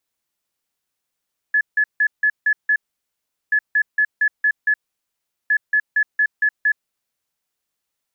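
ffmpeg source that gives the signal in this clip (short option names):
-f lavfi -i "aevalsrc='0.224*sin(2*PI*1710*t)*clip(min(mod(mod(t,1.98),0.23),0.07-mod(mod(t,1.98),0.23))/0.005,0,1)*lt(mod(t,1.98),1.38)':d=5.94:s=44100"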